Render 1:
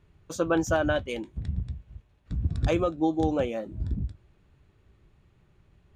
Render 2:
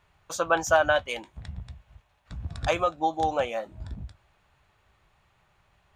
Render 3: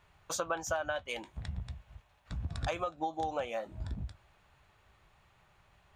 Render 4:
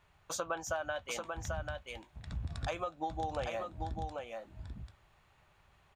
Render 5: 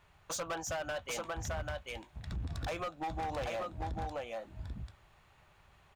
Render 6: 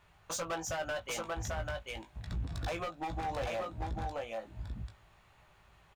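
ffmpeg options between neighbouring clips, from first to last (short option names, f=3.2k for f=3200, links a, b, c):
-af "lowshelf=f=510:t=q:w=1.5:g=-12.5,volume=5dB"
-af "acompressor=threshold=-32dB:ratio=5"
-af "aecho=1:1:790:0.596,volume=-2.5dB"
-af "asoftclip=type=hard:threshold=-36.5dB,volume=3dB"
-filter_complex "[0:a]asplit=2[a][b];[b]adelay=18,volume=-7dB[c];[a][c]amix=inputs=2:normalize=0"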